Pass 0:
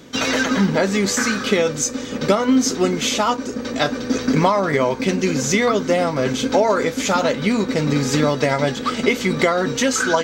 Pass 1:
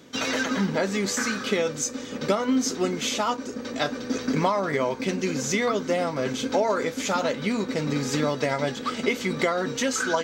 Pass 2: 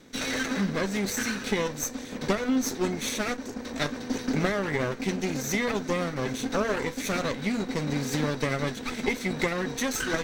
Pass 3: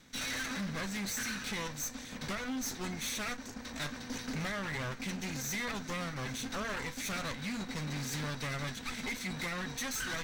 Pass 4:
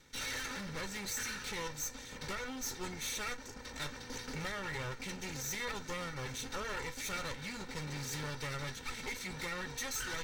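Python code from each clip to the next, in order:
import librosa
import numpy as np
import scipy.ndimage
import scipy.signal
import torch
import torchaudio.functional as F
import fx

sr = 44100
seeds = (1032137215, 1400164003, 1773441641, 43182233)

y1 = fx.low_shelf(x, sr, hz=80.0, db=-9.0)
y1 = y1 * 10.0 ** (-6.5 / 20.0)
y2 = fx.lower_of_two(y1, sr, delay_ms=0.51)
y2 = y2 * 10.0 ** (-2.0 / 20.0)
y3 = fx.peak_eq(y2, sr, hz=400.0, db=-12.5, octaves=1.5)
y3 = np.clip(10.0 ** (31.0 / 20.0) * y3, -1.0, 1.0) / 10.0 ** (31.0 / 20.0)
y3 = y3 * 10.0 ** (-2.5 / 20.0)
y4 = y3 + 0.56 * np.pad(y3, (int(2.2 * sr / 1000.0), 0))[:len(y3)]
y4 = y4 * 10.0 ** (-3.0 / 20.0)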